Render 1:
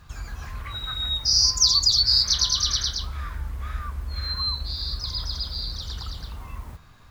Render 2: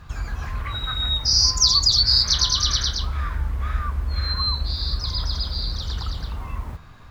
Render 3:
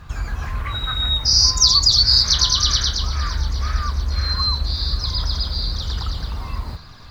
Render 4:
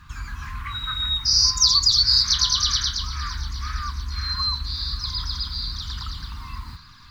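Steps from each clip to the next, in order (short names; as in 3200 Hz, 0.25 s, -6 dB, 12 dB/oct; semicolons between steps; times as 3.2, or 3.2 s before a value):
high shelf 4300 Hz -9 dB; gain +6.5 dB
thin delay 0.563 s, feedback 61%, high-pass 1900 Hz, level -18 dB; gain +3 dB
EQ curve 280 Hz 0 dB, 610 Hz -24 dB, 1000 Hz +5 dB; gain -8 dB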